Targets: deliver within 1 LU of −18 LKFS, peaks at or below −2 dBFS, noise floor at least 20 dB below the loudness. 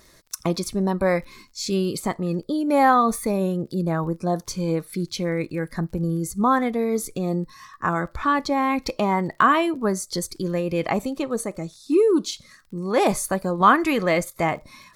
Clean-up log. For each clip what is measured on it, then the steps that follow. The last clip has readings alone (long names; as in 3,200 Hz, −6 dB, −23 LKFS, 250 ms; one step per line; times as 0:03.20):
crackle rate 25 per second; integrated loudness −23.0 LKFS; sample peak −2.5 dBFS; target loudness −18.0 LKFS
→ click removal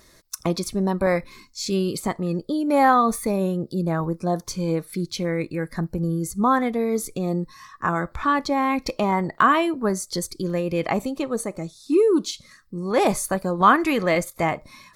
crackle rate 0.067 per second; integrated loudness −23.0 LKFS; sample peak −2.5 dBFS; target loudness −18.0 LKFS
→ level +5 dB
brickwall limiter −2 dBFS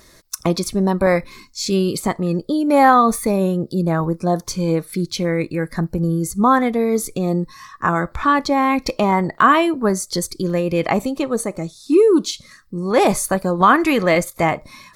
integrated loudness −18.5 LKFS; sample peak −2.0 dBFS; background noise floor −50 dBFS